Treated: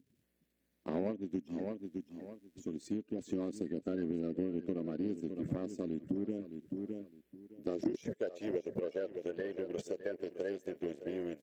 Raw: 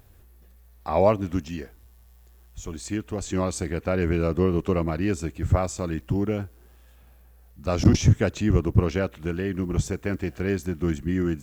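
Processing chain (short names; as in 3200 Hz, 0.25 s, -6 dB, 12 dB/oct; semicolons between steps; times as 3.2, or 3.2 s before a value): bin magnitudes rounded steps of 30 dB; power-law curve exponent 1.4; band shelf 1000 Hz -10.5 dB 1.1 oct; feedback echo 0.612 s, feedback 16%, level -14.5 dB; high-pass sweep 250 Hz -> 510 Hz, 7.44–8.21; tilt -2 dB/oct; compressor 4:1, threshold -36 dBFS, peak gain reduction 20.5 dB; gain +1 dB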